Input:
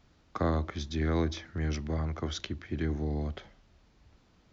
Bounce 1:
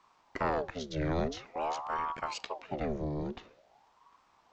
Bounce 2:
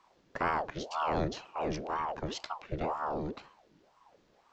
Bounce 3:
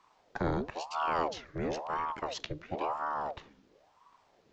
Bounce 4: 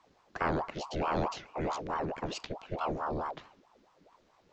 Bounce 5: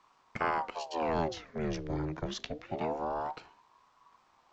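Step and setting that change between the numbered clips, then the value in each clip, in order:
ring modulator with a swept carrier, at: 0.48 Hz, 2 Hz, 0.98 Hz, 4.6 Hz, 0.25 Hz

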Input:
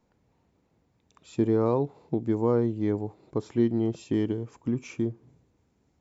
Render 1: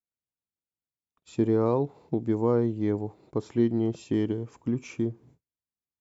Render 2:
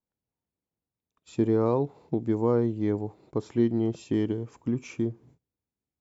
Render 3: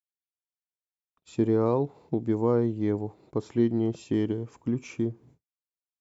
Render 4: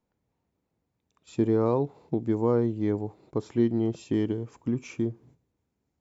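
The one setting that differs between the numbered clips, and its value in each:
gate, range: -36 dB, -23 dB, -56 dB, -10 dB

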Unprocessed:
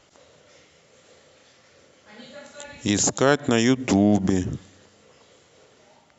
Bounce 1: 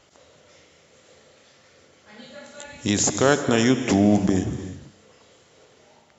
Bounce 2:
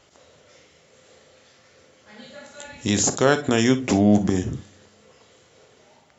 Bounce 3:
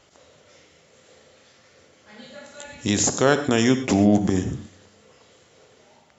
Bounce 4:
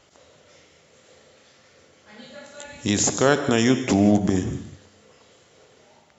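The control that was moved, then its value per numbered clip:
gated-style reverb, gate: 370 ms, 80 ms, 150 ms, 220 ms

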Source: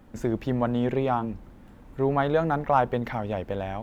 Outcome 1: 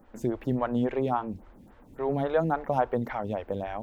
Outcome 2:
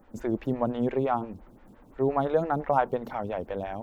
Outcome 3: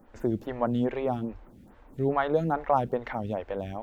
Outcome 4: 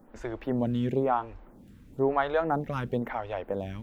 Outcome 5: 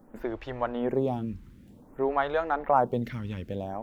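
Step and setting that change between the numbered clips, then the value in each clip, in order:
lamp-driven phase shifter, rate: 3.6 Hz, 5.8 Hz, 2.4 Hz, 1 Hz, 0.54 Hz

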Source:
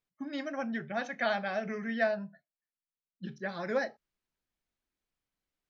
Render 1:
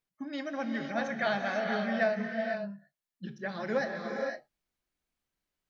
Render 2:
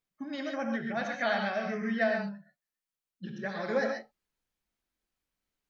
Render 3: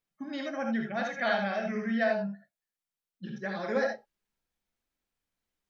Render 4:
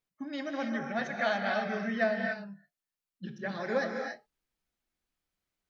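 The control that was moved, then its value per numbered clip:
gated-style reverb, gate: 530 ms, 160 ms, 100 ms, 310 ms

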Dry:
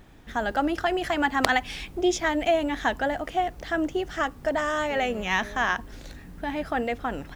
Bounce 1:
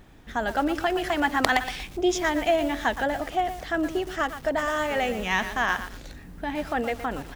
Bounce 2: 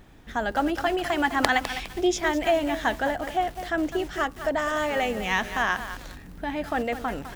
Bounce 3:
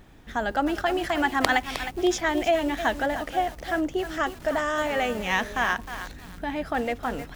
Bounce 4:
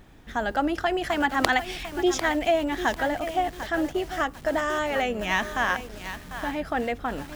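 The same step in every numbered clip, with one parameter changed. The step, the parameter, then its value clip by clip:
bit-crushed delay, time: 118 ms, 205 ms, 311 ms, 747 ms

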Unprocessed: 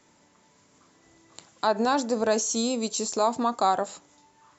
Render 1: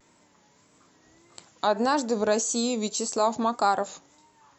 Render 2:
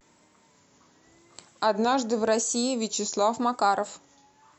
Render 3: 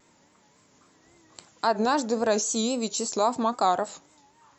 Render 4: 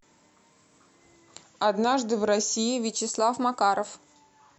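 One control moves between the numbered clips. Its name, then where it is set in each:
vibrato, rate: 1.7 Hz, 0.89 Hz, 3.7 Hz, 0.36 Hz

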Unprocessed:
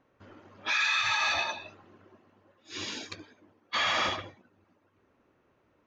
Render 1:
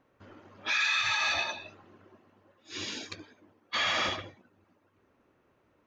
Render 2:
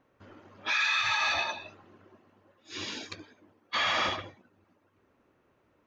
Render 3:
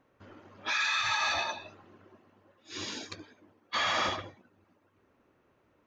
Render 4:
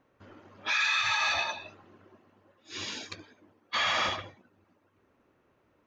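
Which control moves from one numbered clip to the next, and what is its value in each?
dynamic bell, frequency: 980 Hz, 7.8 kHz, 2.6 kHz, 320 Hz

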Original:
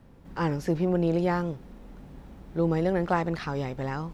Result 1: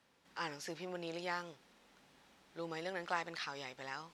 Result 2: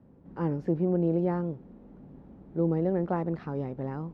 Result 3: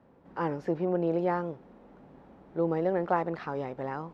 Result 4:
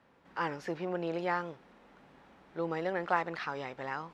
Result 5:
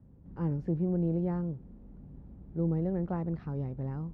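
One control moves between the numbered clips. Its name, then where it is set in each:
band-pass filter, frequency: 4.8 kHz, 260 Hz, 660 Hz, 1.7 kHz, 100 Hz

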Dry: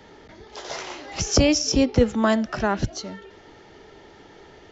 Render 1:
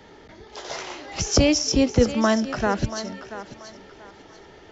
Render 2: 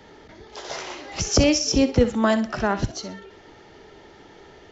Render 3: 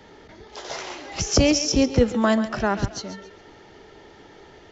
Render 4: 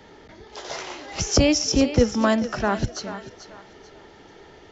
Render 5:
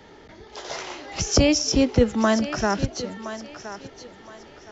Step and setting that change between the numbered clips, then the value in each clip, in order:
thinning echo, time: 684 ms, 63 ms, 137 ms, 438 ms, 1019 ms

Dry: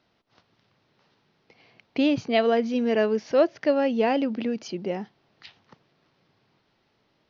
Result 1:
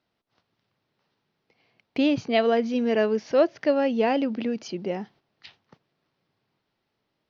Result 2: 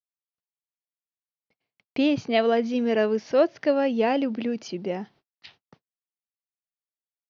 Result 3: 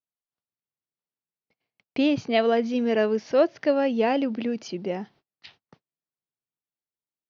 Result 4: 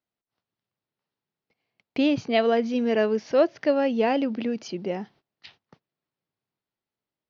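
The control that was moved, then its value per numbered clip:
gate, range: -9 dB, -52 dB, -36 dB, -23 dB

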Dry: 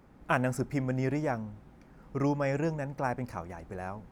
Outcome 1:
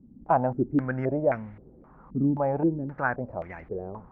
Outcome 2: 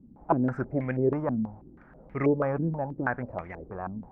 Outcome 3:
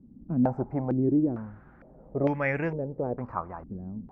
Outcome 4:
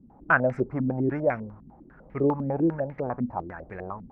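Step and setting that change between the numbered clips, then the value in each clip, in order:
step-sequenced low-pass, rate: 3.8 Hz, 6.2 Hz, 2.2 Hz, 10 Hz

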